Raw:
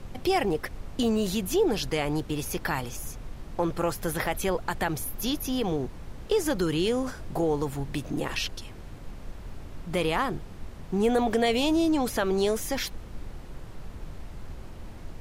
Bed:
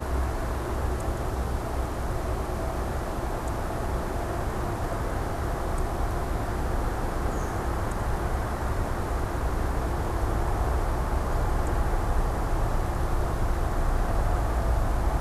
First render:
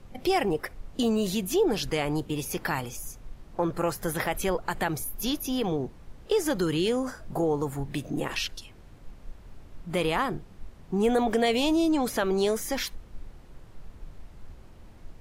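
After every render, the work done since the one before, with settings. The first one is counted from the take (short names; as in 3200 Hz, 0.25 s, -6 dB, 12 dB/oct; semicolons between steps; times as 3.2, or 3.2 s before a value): noise print and reduce 8 dB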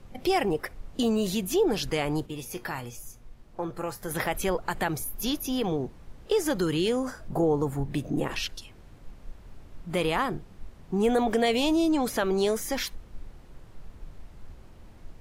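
2.26–4.11 resonator 120 Hz, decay 0.22 s; 7.28–8.43 tilt shelf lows +3 dB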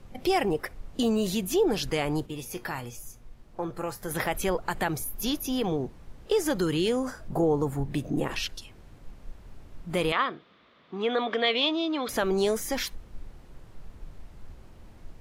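10.12–12.09 speaker cabinet 350–4200 Hz, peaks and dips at 380 Hz -5 dB, 820 Hz -8 dB, 1200 Hz +7 dB, 2100 Hz +4 dB, 3500 Hz +9 dB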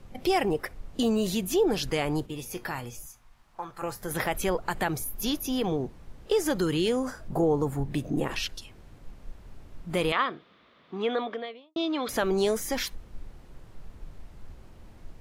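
3.06–3.82 resonant low shelf 660 Hz -10.5 dB, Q 1.5; 10.96–11.76 studio fade out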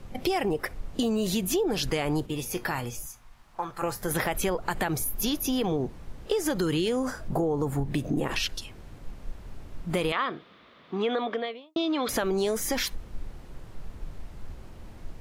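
in parallel at -2.5 dB: limiter -22 dBFS, peak gain reduction 8.5 dB; on the sum: compressor, threshold -23 dBFS, peak gain reduction 7 dB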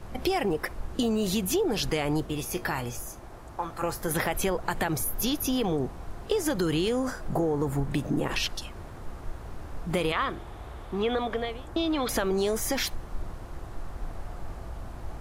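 add bed -15.5 dB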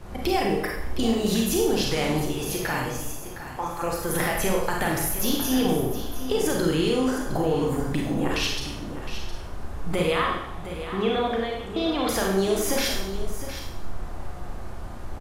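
echo 0.712 s -11.5 dB; Schroeder reverb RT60 0.73 s, combs from 31 ms, DRR -1 dB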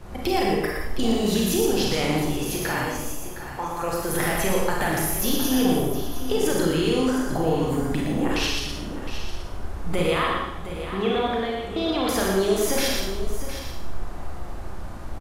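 echo 0.117 s -4.5 dB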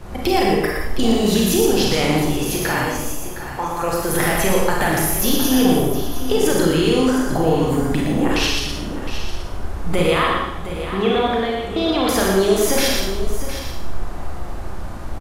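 gain +5.5 dB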